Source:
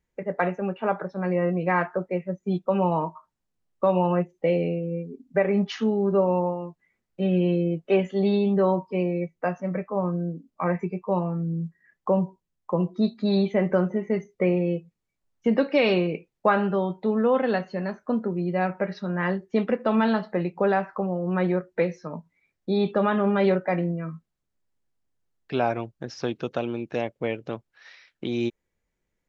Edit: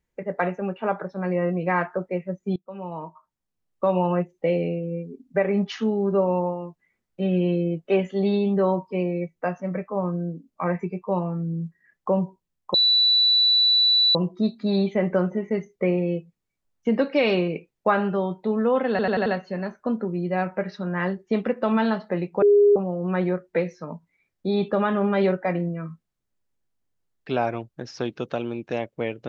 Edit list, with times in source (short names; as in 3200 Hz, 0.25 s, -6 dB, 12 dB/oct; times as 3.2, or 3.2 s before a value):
2.56–3.94 fade in, from -22.5 dB
12.74 add tone 3960 Hz -15 dBFS 1.41 s
17.49 stutter 0.09 s, 5 plays
20.65–20.99 bleep 409 Hz -12 dBFS